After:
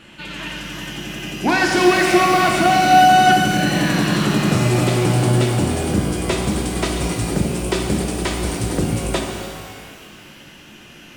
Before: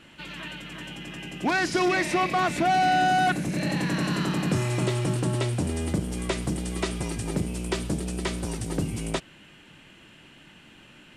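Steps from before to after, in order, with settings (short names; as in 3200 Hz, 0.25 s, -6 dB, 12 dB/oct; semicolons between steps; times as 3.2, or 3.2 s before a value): shimmer reverb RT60 2 s, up +12 st, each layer -8 dB, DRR 1 dB; gain +6 dB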